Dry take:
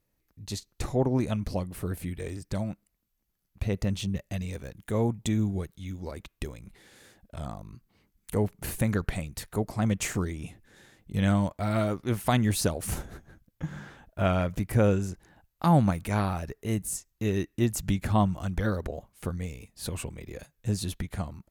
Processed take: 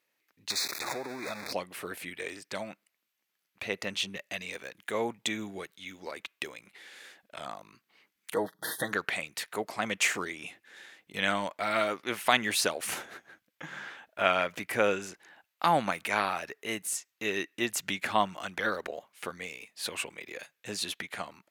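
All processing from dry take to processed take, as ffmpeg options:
-filter_complex "[0:a]asettb=1/sr,asplit=3[a][b][c];[a]atrim=end=0.504[d];[b]atrim=start=0.5:end=1.53,asetpts=PTS-STARTPTS,afade=t=in:d=0.004:c=qsin,afade=t=out:st=1.026:d=0.004:c=qsin,aeval=exprs='val(0)+0.5*0.0398*sgn(val(0))':c=same,acompressor=threshold=-28dB:ratio=12:attack=3.2:release=140:knee=1:detection=peak,asuperstop=centerf=3000:order=8:qfactor=2.9[e];[c]atrim=start=1.526[f];[d][e]acrossfade=d=0.004:c1=hsin:c2=qsin[g];[g][f]acrossfade=d=0.004:c1=qsin:c2=hsin,asettb=1/sr,asplit=3[h][i][j];[h]atrim=end=8.344[k];[i]atrim=start=8.34:end=8.93,asetpts=PTS-STARTPTS,afade=t=in:d=0.004:c=qsin,afade=t=out:st=0.586:d=0.004:c=qsin,asuperstop=centerf=2500:order=20:qfactor=2,equalizer=f=7.3k:w=2.6:g=-9,aecho=1:1:6.3:0.71,atrim=end_sample=26019[l];[j]atrim=start=8.926[m];[k][l]acrossfade=d=0.004:c1=hsin:c2=qsin[n];[n][m]acrossfade=d=0.004:c1=qsin:c2=hsin,highpass=370,equalizer=f=2.4k:t=o:w=2.2:g=11.5,volume=-2dB"

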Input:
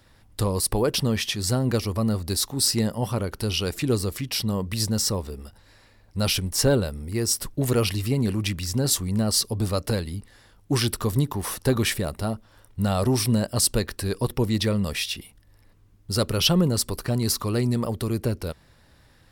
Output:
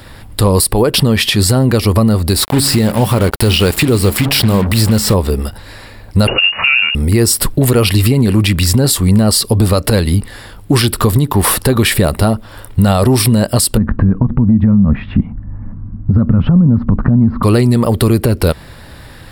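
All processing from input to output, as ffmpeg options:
-filter_complex "[0:a]asettb=1/sr,asplit=3[a][b][c];[a]atrim=end=2.364[d];[b]atrim=start=2.36:end=5.14,asetpts=PTS-STARTPTS,afade=t=in:d=0.004:c=qsin,afade=t=out:st=2.776:d=0.004:c=qsin,acrossover=split=2800[e][f];[f]acompressor=threshold=-28dB:ratio=4:attack=1:release=60[g];[e][g]amix=inputs=2:normalize=0,bandreject=f=69.68:t=h:w=4,bandreject=f=139.36:t=h:w=4,bandreject=f=209.04:t=h:w=4,bandreject=f=278.72:t=h:w=4,acrusher=bits=5:mix=0:aa=0.5[h];[c]atrim=start=5.136[i];[d][h]acrossfade=d=0.004:c1=hsin:c2=qsin[j];[j][i]acrossfade=d=0.004:c1=qsin:c2=hsin,asettb=1/sr,asplit=3[k][l][m];[k]atrim=end=6.274[n];[l]atrim=start=6.27:end=6.95,asetpts=PTS-STARTPTS,afade=t=in:d=0.004:c=qsin,afade=t=out:st=0.676:d=0.004:c=qsin,acrusher=bits=5:mode=log:mix=0:aa=0.000001,lowpass=f=2.5k:t=q:w=0.5098,lowpass=f=2.5k:t=q:w=0.6013,lowpass=f=2.5k:t=q:w=0.9,lowpass=f=2.5k:t=q:w=2.563,afreqshift=-2900[o];[m]atrim=start=6.946[p];[n][o]acrossfade=d=0.004:c1=hsin:c2=qsin[q];[q][p]acrossfade=d=0.004:c1=qsin:c2=hsin,asettb=1/sr,asplit=3[r][s][t];[r]atrim=end=13.774[u];[s]atrim=start=13.77:end=17.43,asetpts=PTS-STARTPTS,afade=t=in:d=0.004:c=qsin,afade=t=out:st=3.656:d=0.004:c=qsin,lowpass=f=1.4k:w=0.5412,lowpass=f=1.4k:w=1.3066,lowshelf=f=300:t=q:w=3:g=9,acompressor=threshold=-18dB:ratio=4:attack=3.2:release=140:knee=1:detection=peak[v];[t]atrim=start=17.426[w];[u][v]acrossfade=d=0.004:c1=hsin:c2=qsin[x];[x][w]acrossfade=d=0.004:c1=qsin:c2=hsin,equalizer=f=6.1k:w=4.2:g=-11.5,acompressor=threshold=-28dB:ratio=6,alimiter=level_in=22.5dB:limit=-1dB:release=50:level=0:latency=1,volume=-1dB"

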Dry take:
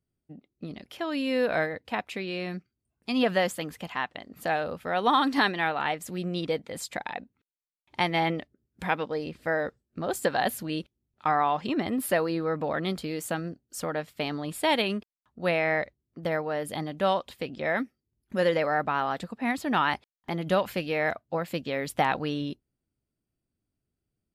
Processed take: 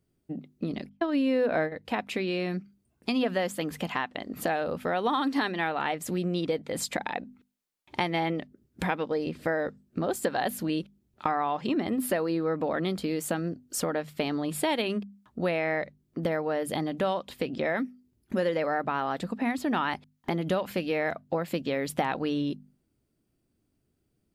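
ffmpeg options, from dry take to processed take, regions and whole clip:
-filter_complex "[0:a]asettb=1/sr,asplit=3[a][b][c];[a]atrim=end=0.894[d];[b]atrim=start=0.89:end=1.72,asetpts=PTS-STARTPTS,afade=t=in:d=0.004:c=qsin,afade=t=out:st=0.826:d=0.004:c=qsin,agate=range=-53dB:threshold=-31dB:ratio=16:release=100:detection=peak,highshelf=f=2.5k:g=-8.5,acontrast=63[e];[c]atrim=start=1.716[f];[d][e]acrossfade=d=0.004:c1=hsin:c2=qsin[g];[g][f]acrossfade=d=0.004:c1=qsin:c2=hsin,equalizer=f=300:t=o:w=1.8:g=4.5,bandreject=f=50:t=h:w=6,bandreject=f=100:t=h:w=6,bandreject=f=150:t=h:w=6,bandreject=f=200:t=h:w=6,bandreject=f=250:t=h:w=6,acompressor=threshold=-36dB:ratio=3,volume=7.5dB"

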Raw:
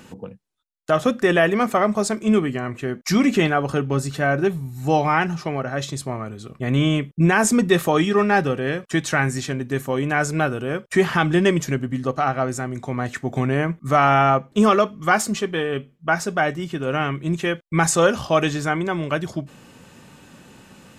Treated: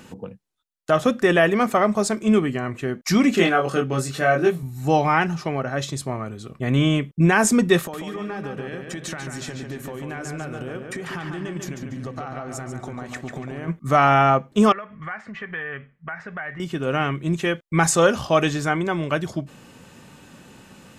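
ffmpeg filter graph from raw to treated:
-filter_complex "[0:a]asettb=1/sr,asplit=3[a][b][c];[a]atrim=end=3.354[d];[b]atrim=start=3.35:end=4.63,asetpts=PTS-STARTPTS,afade=t=in:d=0.004:c=qsin,afade=t=out:st=1.276:d=0.004:c=qsin,highpass=f=250:p=1,bandreject=f=910:w=6.9,asplit=2[e][f];[f]adelay=23,volume=-2dB[g];[e][g]amix=inputs=2:normalize=0,atrim=end_sample=56448[h];[c]atrim=start=4.626[i];[d][h]acrossfade=d=0.004:c1=hsin:c2=qsin[j];[j][i]acrossfade=d=0.004:c1=qsin:c2=hsin,asettb=1/sr,asplit=3[k][l][m];[k]atrim=end=7.794[n];[l]atrim=start=7.79:end=13.68,asetpts=PTS-STARTPTS,afade=t=in:d=0.004:c=qsin,afade=t=out:st=5.886:d=0.004:c=qsin,acompressor=threshold=-28dB:ratio=20:attack=3.2:release=140:knee=1:detection=peak,asplit=2[o][p];[p]adelay=143,lowpass=f=4.3k:p=1,volume=-4.5dB,asplit=2[q][r];[r]adelay=143,lowpass=f=4.3k:p=1,volume=0.51,asplit=2[s][t];[t]adelay=143,lowpass=f=4.3k:p=1,volume=0.51,asplit=2[u][v];[v]adelay=143,lowpass=f=4.3k:p=1,volume=0.51,asplit=2[w][x];[x]adelay=143,lowpass=f=4.3k:p=1,volume=0.51,asplit=2[y][z];[z]adelay=143,lowpass=f=4.3k:p=1,volume=0.51,asplit=2[aa][ab];[ab]adelay=143,lowpass=f=4.3k:p=1,volume=0.51[ac];[o][q][s][u][w][y][aa][ac]amix=inputs=8:normalize=0,atrim=end_sample=259749[ad];[m]atrim=start=13.676[ae];[n][ad]acrossfade=d=0.004:c1=hsin:c2=qsin[af];[af][ae]acrossfade=d=0.004:c1=qsin:c2=hsin,asettb=1/sr,asplit=3[ag][ah][ai];[ag]atrim=end=14.724[aj];[ah]atrim=start=14.72:end=16.6,asetpts=PTS-STARTPTS,afade=t=in:d=0.004:c=qsin,afade=t=out:st=1.876:d=0.004:c=qsin,equalizer=f=320:w=1.4:g=-10,acompressor=threshold=-32dB:ratio=12:attack=3.2:release=140:knee=1:detection=peak,lowpass=f=1.9k:t=q:w=4[ak];[ai]atrim=start=16.596[al];[aj][ak]acrossfade=d=0.004:c1=hsin:c2=qsin[am];[am][al]acrossfade=d=0.004:c1=qsin:c2=hsin"

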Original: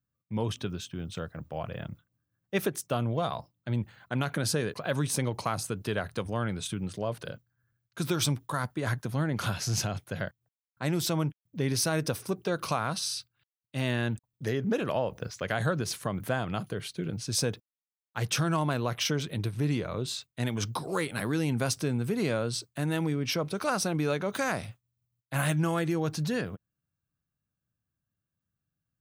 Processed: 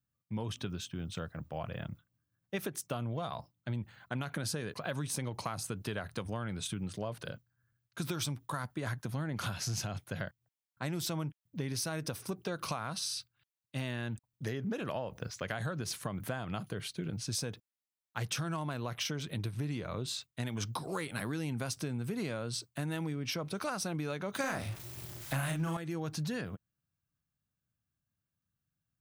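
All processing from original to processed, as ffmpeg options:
-filter_complex "[0:a]asettb=1/sr,asplit=3[a][b][c];[a]atrim=end=24.404[d];[b]atrim=start=24.4:end=25.77,asetpts=PTS-STARTPTS,afade=t=in:d=0.004:c=qsin,afade=t=out:st=1.366:d=0.004:c=qsin,aeval=exprs='val(0)+0.5*0.00794*sgn(val(0))':c=same,acontrast=85,asplit=2[e][f];[f]adelay=37,volume=-3.5dB[g];[e][g]amix=inputs=2:normalize=0,atrim=end_sample=60417[h];[c]atrim=start=25.766[i];[d][h]acrossfade=d=0.004:c1=hsin:c2=qsin[j];[j][i]acrossfade=d=0.004:c1=qsin:c2=hsin,equalizer=f=440:w=1.5:g=-3,acompressor=threshold=-31dB:ratio=6,volume=-1.5dB"

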